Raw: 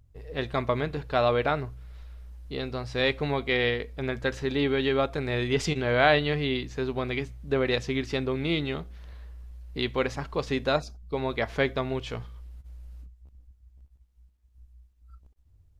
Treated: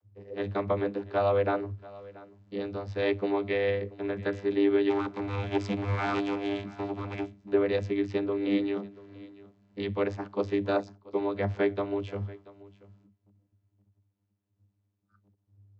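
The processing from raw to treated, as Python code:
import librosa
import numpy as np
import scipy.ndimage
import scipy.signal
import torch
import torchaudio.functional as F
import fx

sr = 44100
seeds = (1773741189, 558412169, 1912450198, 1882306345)

y = fx.lower_of_two(x, sr, delay_ms=0.83, at=(4.88, 7.36), fade=0.02)
y = fx.vocoder(y, sr, bands=32, carrier='saw', carrier_hz=100.0)
y = y + 10.0 ** (-20.5 / 20.0) * np.pad(y, (int(683 * sr / 1000.0), 0))[:len(y)]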